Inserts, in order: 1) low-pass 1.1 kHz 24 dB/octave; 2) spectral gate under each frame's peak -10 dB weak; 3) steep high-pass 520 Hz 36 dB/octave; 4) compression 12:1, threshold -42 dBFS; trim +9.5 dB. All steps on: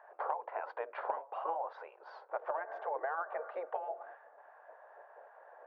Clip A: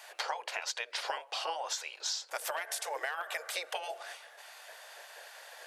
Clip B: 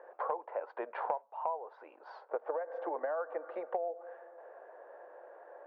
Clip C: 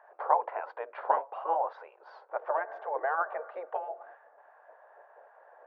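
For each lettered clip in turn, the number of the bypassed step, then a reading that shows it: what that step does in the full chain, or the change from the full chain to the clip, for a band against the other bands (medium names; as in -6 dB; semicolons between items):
1, 2 kHz band +11.5 dB; 2, 250 Hz band +11.0 dB; 4, mean gain reduction 3.0 dB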